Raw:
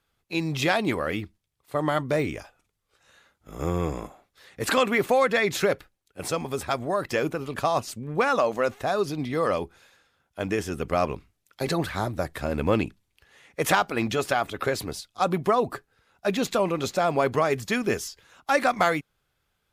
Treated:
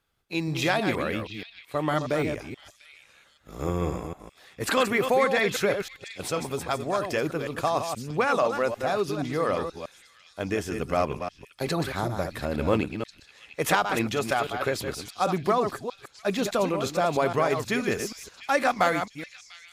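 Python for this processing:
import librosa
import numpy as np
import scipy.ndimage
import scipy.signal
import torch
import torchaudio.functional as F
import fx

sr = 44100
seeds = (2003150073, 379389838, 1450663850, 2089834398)

y = fx.reverse_delay(x, sr, ms=159, wet_db=-7.0)
y = fx.echo_stepped(y, sr, ms=695, hz=3300.0, octaves=0.7, feedback_pct=70, wet_db=-10.5)
y = F.gain(torch.from_numpy(y), -1.5).numpy()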